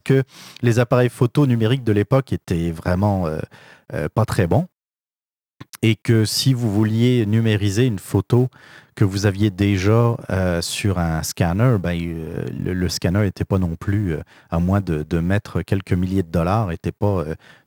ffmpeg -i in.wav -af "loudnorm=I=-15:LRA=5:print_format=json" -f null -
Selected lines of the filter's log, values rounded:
"input_i" : "-20.2",
"input_tp" : "-1.8",
"input_lra" : "3.2",
"input_thresh" : "-30.4",